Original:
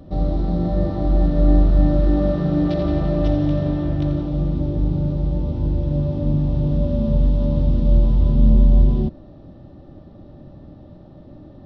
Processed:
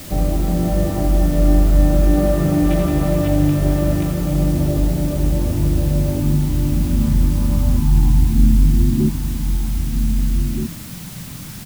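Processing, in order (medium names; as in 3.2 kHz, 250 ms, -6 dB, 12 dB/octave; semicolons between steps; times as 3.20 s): low-pass sweep 2.4 kHz -> 180 Hz, 6.97–9.57 s; in parallel at -1.5 dB: compression 12:1, threshold -21 dBFS, peak gain reduction 13.5 dB; on the sum: spectral selection erased 6.19–9.00 s, 360–740 Hz; word length cut 6-bit, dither triangular; echo from a far wall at 270 m, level -6 dB; trim -1 dB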